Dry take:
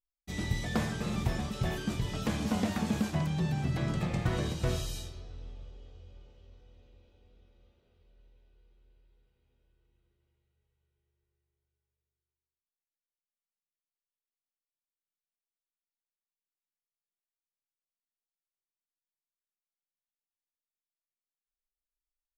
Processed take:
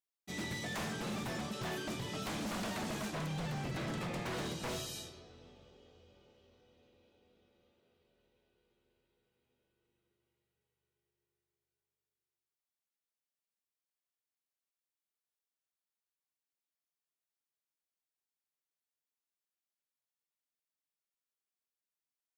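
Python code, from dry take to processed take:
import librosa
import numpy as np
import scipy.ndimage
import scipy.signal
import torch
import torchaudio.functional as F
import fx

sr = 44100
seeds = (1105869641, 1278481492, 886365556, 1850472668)

y = scipy.signal.sosfilt(scipy.signal.butter(2, 180.0, 'highpass', fs=sr, output='sos'), x)
y = 10.0 ** (-32.5 / 20.0) * (np.abs((y / 10.0 ** (-32.5 / 20.0) + 3.0) % 4.0 - 2.0) - 1.0)
y = y * 10.0 ** (-1.0 / 20.0)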